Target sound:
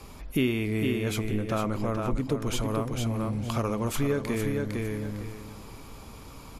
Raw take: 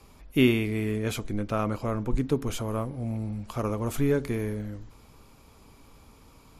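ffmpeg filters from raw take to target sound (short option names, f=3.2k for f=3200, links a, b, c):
-filter_complex "[0:a]asettb=1/sr,asplit=3[a][b][c];[a]atrim=end=2.384[d];[b]atrim=start=2.38:end=4.52,asetpts=PTS-STARTPTS,afade=t=in:d=0.004:c=qsin,afade=t=out:st=2.136:d=0.004:c=qsin,equalizer=f=3.4k:t=o:w=2.5:g=4.5[e];[c]atrim=start=4.516[f];[d][e]acrossfade=d=0.004:c1=hsin:c2=qsin[g];[g][f]acrossfade=d=0.004:c1=qsin:c2=hsin,aecho=1:1:455|910|1365:0.501|0.0852|0.0145,acompressor=threshold=-37dB:ratio=2.5,volume=8dB"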